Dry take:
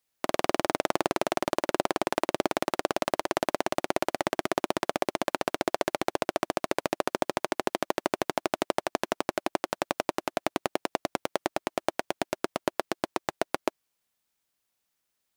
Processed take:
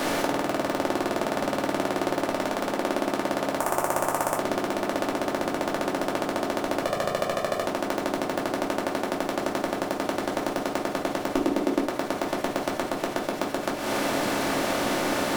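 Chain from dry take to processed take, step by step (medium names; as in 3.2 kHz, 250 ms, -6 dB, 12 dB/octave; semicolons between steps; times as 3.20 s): spectral levelling over time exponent 0.2; 6.79–7.66 s: comb 1.7 ms, depth 71%; 11.34–11.85 s: peaking EQ 300 Hz +12 dB 1.3 oct; compression 6:1, threshold -28 dBFS, peak gain reduction 15.5 dB; waveshaping leveller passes 2; 3.57–4.39 s: ten-band graphic EQ 125 Hz +3 dB, 250 Hz -8 dB, 1 kHz +7 dB, 4 kHz -10 dB, 8 kHz +8 dB, 16 kHz +12 dB; simulated room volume 230 m³, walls furnished, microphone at 2.5 m; trim -3.5 dB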